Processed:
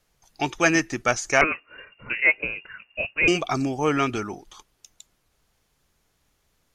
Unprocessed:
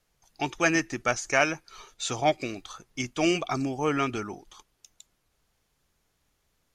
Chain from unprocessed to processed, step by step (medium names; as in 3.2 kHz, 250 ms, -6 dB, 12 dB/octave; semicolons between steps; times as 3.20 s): 1.41–3.28 s: frequency inversion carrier 2.8 kHz; trim +4 dB